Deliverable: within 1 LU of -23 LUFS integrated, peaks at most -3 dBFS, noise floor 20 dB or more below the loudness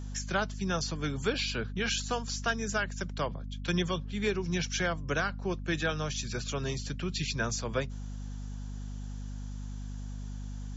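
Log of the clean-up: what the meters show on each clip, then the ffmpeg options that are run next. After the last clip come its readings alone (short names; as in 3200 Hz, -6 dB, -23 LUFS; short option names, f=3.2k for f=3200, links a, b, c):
hum 50 Hz; harmonics up to 250 Hz; hum level -36 dBFS; loudness -33.5 LUFS; peak -16.0 dBFS; loudness target -23.0 LUFS
-> -af "bandreject=f=50:t=h:w=6,bandreject=f=100:t=h:w=6,bandreject=f=150:t=h:w=6,bandreject=f=200:t=h:w=6,bandreject=f=250:t=h:w=6"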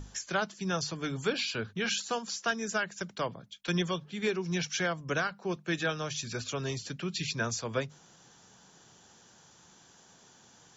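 hum none; loudness -33.0 LUFS; peak -17.5 dBFS; loudness target -23.0 LUFS
-> -af "volume=10dB"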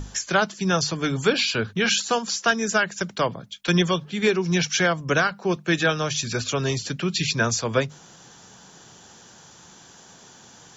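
loudness -23.0 LUFS; peak -7.5 dBFS; noise floor -49 dBFS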